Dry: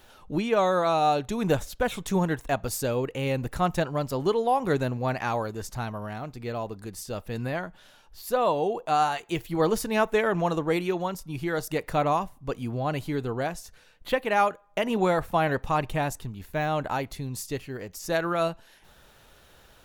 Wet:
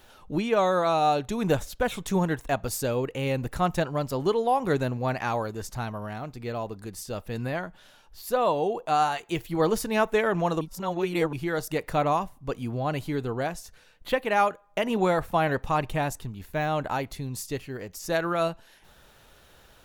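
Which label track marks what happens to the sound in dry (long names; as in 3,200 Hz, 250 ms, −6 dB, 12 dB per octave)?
10.610000	11.330000	reverse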